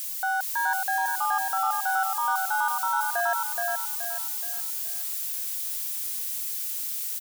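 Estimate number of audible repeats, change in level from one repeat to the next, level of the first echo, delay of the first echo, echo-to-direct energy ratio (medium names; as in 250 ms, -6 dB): 4, -8.0 dB, -3.0 dB, 424 ms, -2.5 dB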